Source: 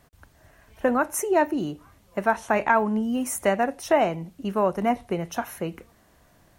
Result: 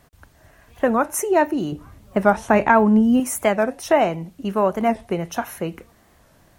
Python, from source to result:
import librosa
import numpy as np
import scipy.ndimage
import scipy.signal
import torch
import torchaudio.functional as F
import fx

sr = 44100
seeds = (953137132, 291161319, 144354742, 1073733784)

y = fx.low_shelf(x, sr, hz=390.0, db=9.0, at=(1.72, 3.2))
y = fx.record_warp(y, sr, rpm=45.0, depth_cents=160.0)
y = F.gain(torch.from_numpy(y), 3.5).numpy()